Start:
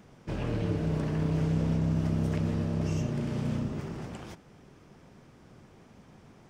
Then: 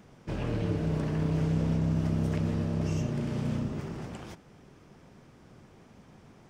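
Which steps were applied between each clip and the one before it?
no audible change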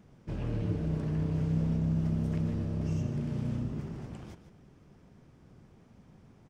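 bass shelf 300 Hz +8.5 dB; on a send: delay 149 ms -11.5 dB; on the sum: trim -8.5 dB

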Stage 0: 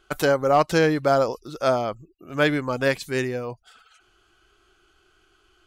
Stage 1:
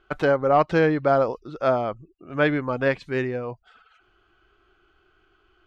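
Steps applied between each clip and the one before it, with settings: low-pass 2.5 kHz 12 dB/octave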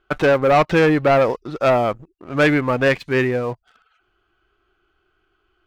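waveshaping leveller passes 2; dynamic bell 2.2 kHz, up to +4 dB, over -32 dBFS, Q 1.5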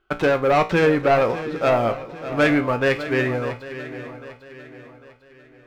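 feedback comb 58 Hz, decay 0.29 s, harmonics all, mix 70%; on a send: shuffle delay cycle 799 ms, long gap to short 3:1, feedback 38%, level -13 dB; on the sum: trim +2.5 dB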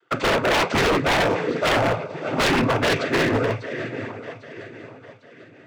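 noise-vocoded speech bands 16; wavefolder -18 dBFS; trim +4 dB

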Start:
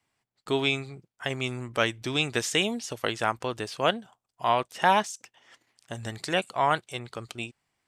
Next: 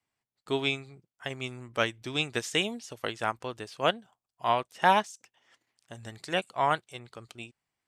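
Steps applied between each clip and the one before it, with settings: upward expansion 1.5:1, over -34 dBFS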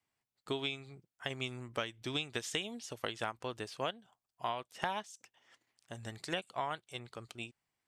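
dynamic bell 3.3 kHz, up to +5 dB, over -48 dBFS, Q 3.2; compression 12:1, threshold -31 dBFS, peak gain reduction 15.5 dB; trim -1.5 dB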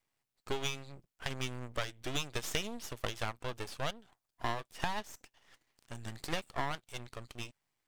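half-wave rectifier; trim +6 dB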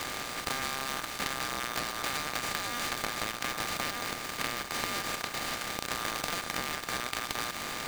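spectral levelling over time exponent 0.2; compression, threshold -29 dBFS, peak gain reduction 8 dB; polarity switched at an audio rate 1.2 kHz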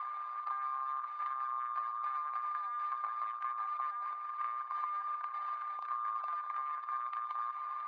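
spectral contrast enhancement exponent 2.3; ladder band-pass 1.1 kHz, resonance 85%

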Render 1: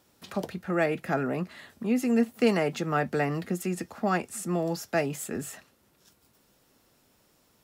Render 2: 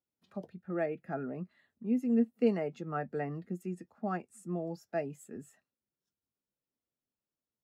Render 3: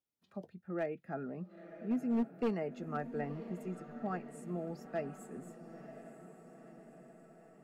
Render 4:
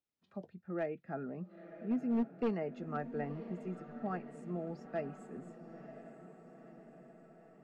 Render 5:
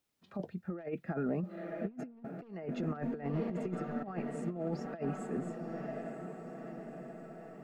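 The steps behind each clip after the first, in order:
spectral contrast expander 1.5:1; trim -4 dB
overload inside the chain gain 24 dB; echo that smears into a reverb 985 ms, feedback 59%, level -12 dB; trim -3.5 dB
distance through air 100 m
compressor with a negative ratio -42 dBFS, ratio -0.5; trim +6 dB

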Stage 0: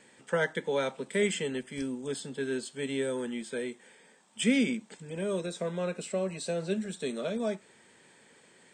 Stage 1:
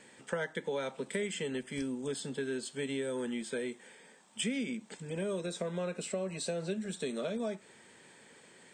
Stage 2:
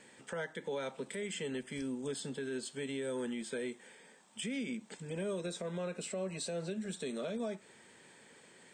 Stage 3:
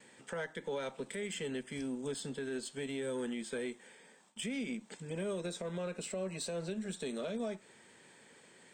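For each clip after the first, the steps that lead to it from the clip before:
compression 5:1, threshold -34 dBFS, peak gain reduction 12.5 dB; trim +1.5 dB
peak limiter -28.5 dBFS, peak gain reduction 7.5 dB; trim -1.5 dB
Chebyshev shaper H 2 -21 dB, 7 -38 dB, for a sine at -29.5 dBFS; gate with hold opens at -55 dBFS

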